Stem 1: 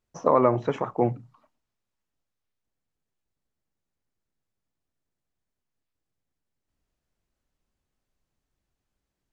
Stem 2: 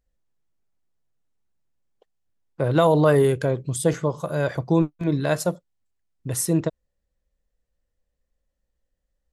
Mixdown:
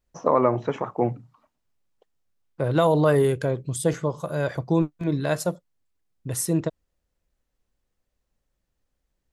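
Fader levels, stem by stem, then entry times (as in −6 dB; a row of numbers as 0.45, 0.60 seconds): 0.0, −2.0 decibels; 0.00, 0.00 seconds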